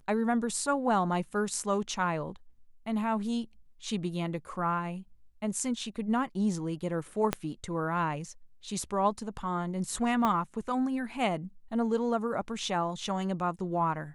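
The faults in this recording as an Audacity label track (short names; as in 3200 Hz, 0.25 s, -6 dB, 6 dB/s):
7.330000	7.330000	pop -11 dBFS
10.250000	10.250000	pop -15 dBFS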